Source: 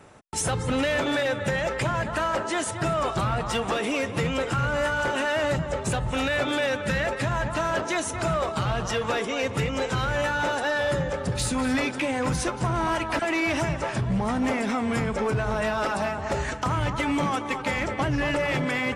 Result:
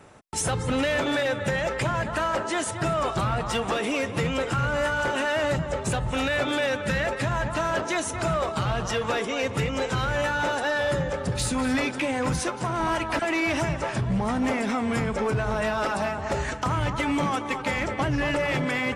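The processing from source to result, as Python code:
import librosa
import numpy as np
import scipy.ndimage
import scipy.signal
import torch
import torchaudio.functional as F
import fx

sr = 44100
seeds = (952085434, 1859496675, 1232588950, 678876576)

y = fx.highpass(x, sr, hz=200.0, slope=6, at=(12.39, 12.8))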